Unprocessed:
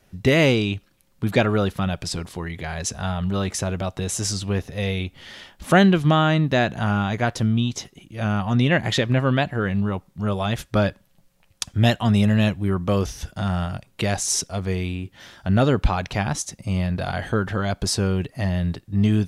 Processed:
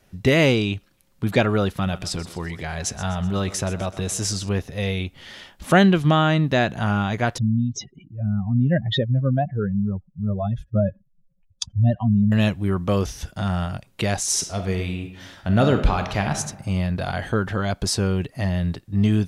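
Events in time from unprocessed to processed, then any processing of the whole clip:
0:01.66–0:04.49: feedback echo with a high-pass in the loop 126 ms, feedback 51%, high-pass 190 Hz, level −14.5 dB
0:07.38–0:12.32: expanding power law on the bin magnitudes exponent 2.6
0:14.25–0:16.36: thrown reverb, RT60 0.85 s, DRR 6 dB

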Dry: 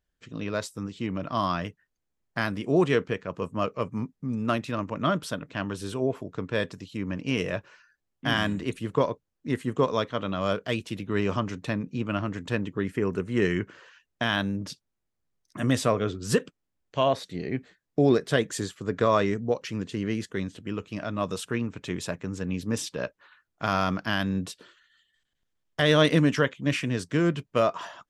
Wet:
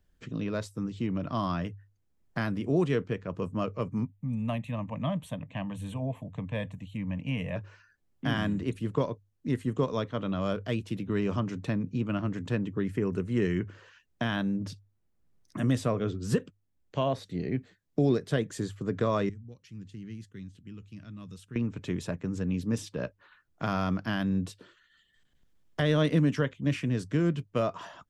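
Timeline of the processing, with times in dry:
0:04.05–0:07.56: phaser with its sweep stopped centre 1,400 Hz, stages 6
0:19.29–0:21.56: guitar amp tone stack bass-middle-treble 6-0-2
whole clip: low-shelf EQ 350 Hz +10 dB; mains-hum notches 50/100 Hz; multiband upward and downward compressor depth 40%; level −7.5 dB

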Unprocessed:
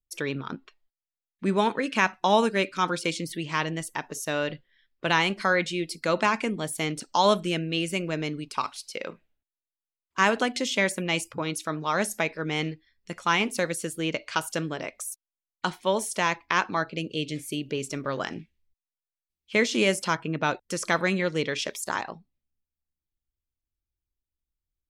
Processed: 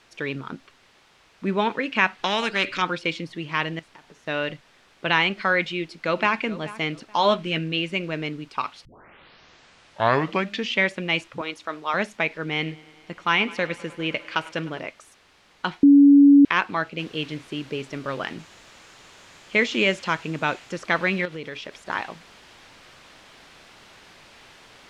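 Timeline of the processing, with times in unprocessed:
0:02.19–0:02.82: every bin compressed towards the loudest bin 2 to 1
0:03.79–0:04.27: downward compressor 12 to 1, threshold −44 dBFS
0:05.76–0:06.36: delay throw 430 ms, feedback 25%, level −16 dB
0:07.18–0:07.73: double-tracking delay 13 ms −7.5 dB
0:08.85: tape start 2.01 s
0:11.41–0:11.94: high-pass filter 380 Hz
0:12.52–0:14.79: feedback echo with a high-pass in the loop 103 ms, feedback 84%, high-pass 190 Hz, level −20 dB
0:15.83–0:16.45: beep over 283 Hz −8.5 dBFS
0:16.99: noise floor change −50 dB −42 dB
0:18.39–0:20.72: parametric band 7,000 Hz +7 dB 0.33 octaves
0:21.25–0:21.89: downward compressor 3 to 1, threshold −32 dBFS
whole clip: low-pass filter 3,400 Hz 12 dB per octave; dynamic equaliser 2,600 Hz, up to +6 dB, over −39 dBFS, Q 0.94

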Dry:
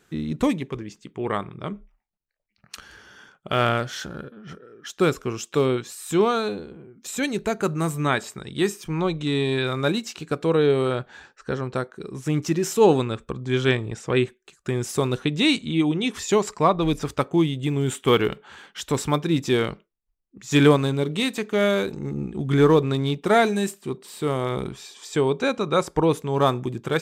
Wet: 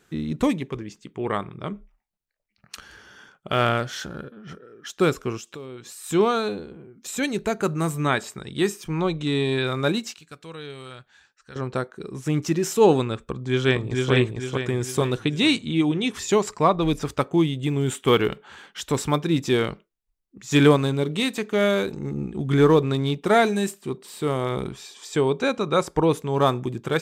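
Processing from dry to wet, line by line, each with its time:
0:05.37–0:06.04: downward compressor 4 to 1, threshold −37 dBFS
0:10.14–0:11.56: guitar amp tone stack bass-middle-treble 5-5-5
0:13.30–0:14.12: delay throw 450 ms, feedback 45%, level −2 dB

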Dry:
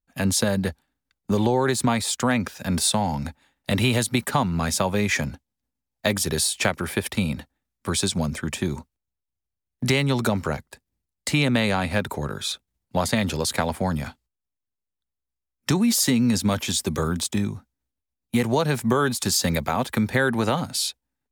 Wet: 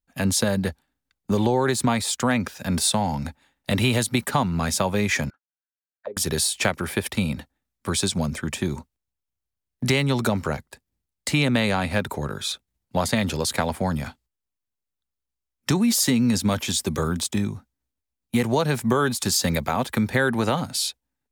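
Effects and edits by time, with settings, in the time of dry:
0:05.30–0:06.17: envelope filter 440–1,600 Hz, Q 11, down, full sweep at −18.5 dBFS

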